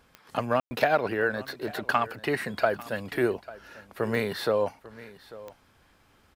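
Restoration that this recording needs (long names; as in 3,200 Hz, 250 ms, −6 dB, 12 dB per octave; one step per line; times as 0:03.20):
click removal
ambience match 0:00.60–0:00.71
echo removal 845 ms −18.5 dB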